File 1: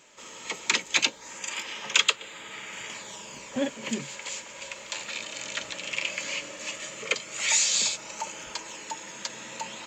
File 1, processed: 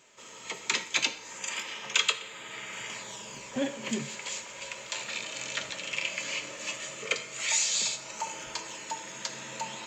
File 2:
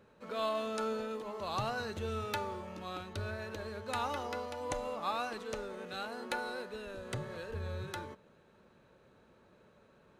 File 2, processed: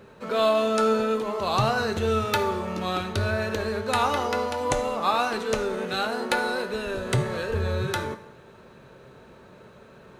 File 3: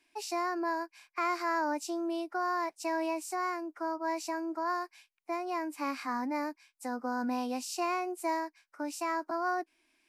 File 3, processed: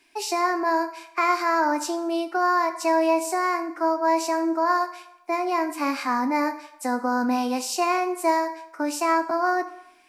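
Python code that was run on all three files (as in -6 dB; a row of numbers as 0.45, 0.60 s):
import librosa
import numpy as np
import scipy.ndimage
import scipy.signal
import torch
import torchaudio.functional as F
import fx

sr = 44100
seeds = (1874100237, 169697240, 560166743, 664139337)

p1 = fx.rider(x, sr, range_db=4, speed_s=0.5)
p2 = x + (p1 * librosa.db_to_amplitude(-2.5))
p3 = fx.rev_fdn(p2, sr, rt60_s=0.84, lf_ratio=0.7, hf_ratio=0.75, size_ms=45.0, drr_db=7.0)
y = p3 * 10.0 ** (-9 / 20.0) / np.max(np.abs(p3))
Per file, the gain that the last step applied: -8.0, +7.5, +4.5 dB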